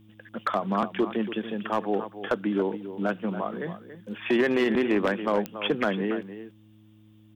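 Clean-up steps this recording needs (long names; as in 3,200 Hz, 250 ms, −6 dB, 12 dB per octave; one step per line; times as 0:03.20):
clipped peaks rebuilt −16.5 dBFS
click removal
hum removal 106.9 Hz, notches 3
echo removal 282 ms −12 dB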